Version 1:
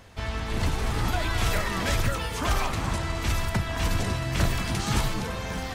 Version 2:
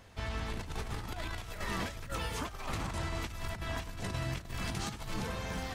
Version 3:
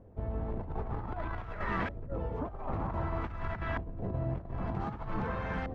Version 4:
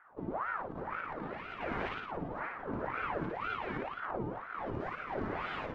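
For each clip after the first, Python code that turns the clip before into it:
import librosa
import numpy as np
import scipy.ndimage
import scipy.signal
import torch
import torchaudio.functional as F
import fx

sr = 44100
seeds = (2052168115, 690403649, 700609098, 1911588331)

y1 = fx.over_compress(x, sr, threshold_db=-28.0, ratio=-0.5)
y1 = F.gain(torch.from_numpy(y1), -8.5).numpy()
y2 = fx.filter_lfo_lowpass(y1, sr, shape='saw_up', hz=0.53, low_hz=450.0, high_hz=1800.0, q=1.3)
y2 = F.gain(torch.from_numpy(y2), 2.5).numpy()
y3 = fx.room_flutter(y2, sr, wall_m=9.7, rt60_s=0.96)
y3 = fx.ring_lfo(y3, sr, carrier_hz=820.0, swing_pct=75, hz=2.0)
y3 = F.gain(torch.from_numpy(y3), -3.5).numpy()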